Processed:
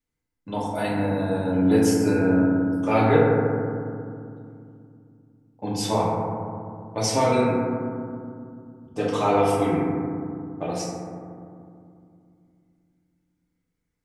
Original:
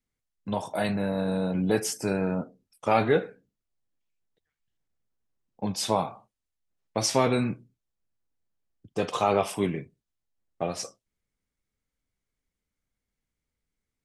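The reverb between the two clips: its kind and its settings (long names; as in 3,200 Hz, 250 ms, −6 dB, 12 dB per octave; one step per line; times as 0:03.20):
feedback delay network reverb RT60 2.4 s, low-frequency decay 1.55×, high-frequency decay 0.25×, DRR −6 dB
level −3 dB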